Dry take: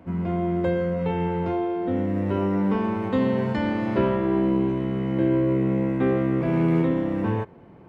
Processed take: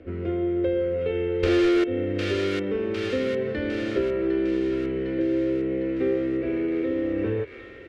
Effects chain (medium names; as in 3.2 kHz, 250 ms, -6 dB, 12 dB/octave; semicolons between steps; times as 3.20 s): gain riding within 4 dB 0.5 s; 1.43–1.84 s: fuzz box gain 46 dB, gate -44 dBFS; low-pass 3.7 kHz 12 dB/octave; comb 2.2 ms, depth 42%; feedback echo behind a high-pass 755 ms, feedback 59%, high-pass 1.5 kHz, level -5 dB; compression 3:1, threshold -22 dBFS, peak gain reduction 8 dB; static phaser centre 380 Hz, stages 4; trim +2.5 dB